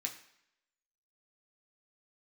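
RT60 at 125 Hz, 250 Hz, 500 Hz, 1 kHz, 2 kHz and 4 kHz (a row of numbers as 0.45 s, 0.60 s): 0.60 s, 0.70 s, 0.70 s, 0.75 s, 0.80 s, 0.75 s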